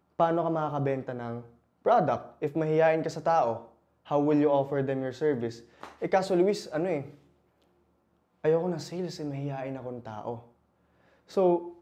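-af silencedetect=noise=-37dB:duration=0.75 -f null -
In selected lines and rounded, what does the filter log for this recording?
silence_start: 7.08
silence_end: 8.44 | silence_duration: 1.36
silence_start: 10.39
silence_end: 11.35 | silence_duration: 0.96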